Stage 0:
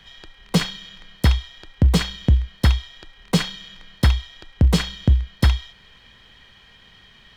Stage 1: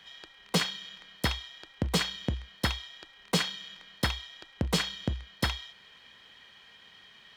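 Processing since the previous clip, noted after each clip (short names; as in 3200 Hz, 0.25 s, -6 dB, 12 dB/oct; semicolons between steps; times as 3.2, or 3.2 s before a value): HPF 390 Hz 6 dB/oct; gain -3.5 dB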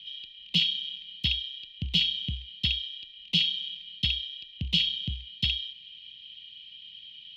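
EQ curve 160 Hz 0 dB, 470 Hz -22 dB, 1600 Hz -28 dB, 2900 Hz +15 dB, 8300 Hz -21 dB; gain -1.5 dB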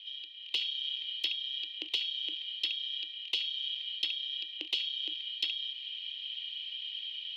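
AGC gain up to 9 dB; rippled Chebyshev high-pass 300 Hz, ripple 3 dB; compressor 16:1, threshold -30 dBFS, peak gain reduction 16 dB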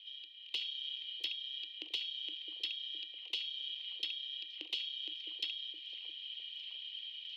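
delay with a stepping band-pass 0.66 s, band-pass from 410 Hz, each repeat 0.7 oct, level -5 dB; gain -6 dB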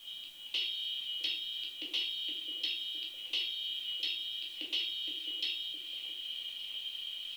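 added noise white -66 dBFS; shoebox room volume 250 m³, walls furnished, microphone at 2.4 m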